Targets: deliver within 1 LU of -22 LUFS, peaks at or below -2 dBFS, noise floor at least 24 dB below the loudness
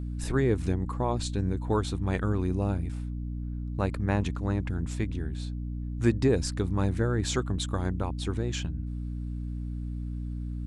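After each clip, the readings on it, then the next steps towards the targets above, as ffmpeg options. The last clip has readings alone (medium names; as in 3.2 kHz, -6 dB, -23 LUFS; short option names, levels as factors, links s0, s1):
hum 60 Hz; highest harmonic 300 Hz; hum level -31 dBFS; loudness -30.5 LUFS; peak level -10.5 dBFS; loudness target -22.0 LUFS
-> -af "bandreject=f=60:t=h:w=6,bandreject=f=120:t=h:w=6,bandreject=f=180:t=h:w=6,bandreject=f=240:t=h:w=6,bandreject=f=300:t=h:w=6"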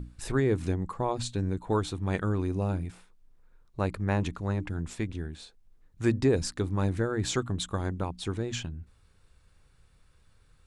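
hum not found; loudness -30.5 LUFS; peak level -12.0 dBFS; loudness target -22.0 LUFS
-> -af "volume=2.66"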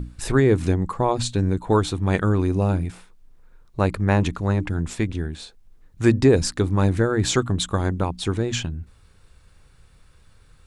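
loudness -22.0 LUFS; peak level -3.5 dBFS; noise floor -53 dBFS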